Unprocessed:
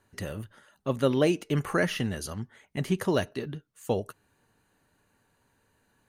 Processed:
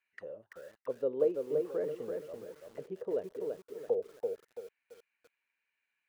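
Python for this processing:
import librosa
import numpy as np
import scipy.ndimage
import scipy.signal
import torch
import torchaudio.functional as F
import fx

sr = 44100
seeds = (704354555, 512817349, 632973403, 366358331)

y = fx.auto_wah(x, sr, base_hz=470.0, top_hz=2400.0, q=8.1, full_db=-30.5, direction='down')
y = fx.echo_crushed(y, sr, ms=335, feedback_pct=35, bits=10, wet_db=-4)
y = F.gain(torch.from_numpy(y), 1.5).numpy()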